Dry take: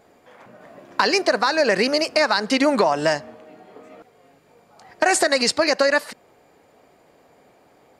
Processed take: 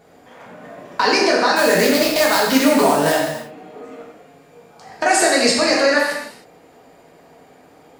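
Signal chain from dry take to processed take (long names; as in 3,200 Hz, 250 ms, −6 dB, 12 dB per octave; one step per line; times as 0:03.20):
in parallel at +1.5 dB: brickwall limiter −16 dBFS, peak gain reduction 11 dB
0:01.56–0:03.21: on the sum: sample-rate reduction 9,000 Hz, jitter 20%
reverb whose tail is shaped and stops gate 340 ms falling, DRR −4 dB
level −5.5 dB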